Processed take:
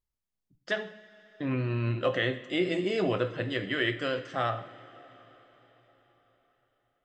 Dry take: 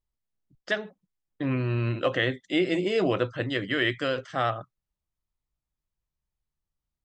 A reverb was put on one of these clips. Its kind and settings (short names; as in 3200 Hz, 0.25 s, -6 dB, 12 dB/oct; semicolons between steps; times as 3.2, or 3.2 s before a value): two-slope reverb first 0.6 s, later 4.8 s, from -16 dB, DRR 8 dB; gain -3.5 dB